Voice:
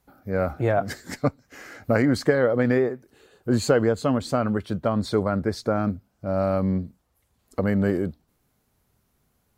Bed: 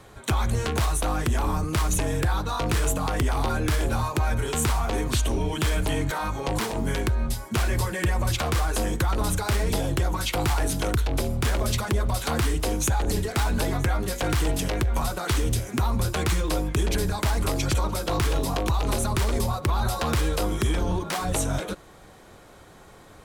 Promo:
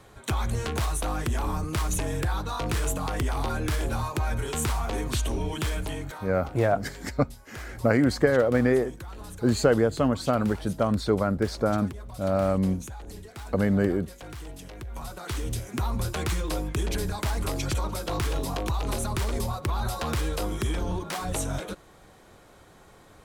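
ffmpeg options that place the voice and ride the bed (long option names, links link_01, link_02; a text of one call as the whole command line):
ffmpeg -i stem1.wav -i stem2.wav -filter_complex "[0:a]adelay=5950,volume=-1dB[link_01];[1:a]volume=9dB,afade=type=out:start_time=5.55:duration=0.78:silence=0.223872,afade=type=in:start_time=14.75:duration=1.1:silence=0.237137[link_02];[link_01][link_02]amix=inputs=2:normalize=0" out.wav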